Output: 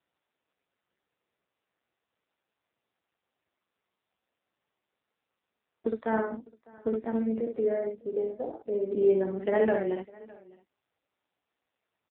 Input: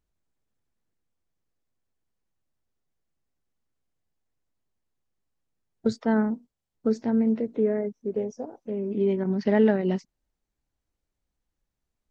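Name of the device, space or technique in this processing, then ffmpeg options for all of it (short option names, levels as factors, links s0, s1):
satellite phone: -filter_complex "[0:a]asplit=3[s0][s1][s2];[s0]afade=t=out:st=8.32:d=0.02[s3];[s1]equalizer=f=350:w=0.74:g=4.5,afade=t=in:st=8.32:d=0.02,afade=t=out:st=9.27:d=0.02[s4];[s2]afade=t=in:st=9.27:d=0.02[s5];[s3][s4][s5]amix=inputs=3:normalize=0,highpass=390,lowpass=3100,aecho=1:1:17|63:0.316|0.631,aecho=1:1:604:0.0668" -ar 8000 -c:a libopencore_amrnb -b:a 5900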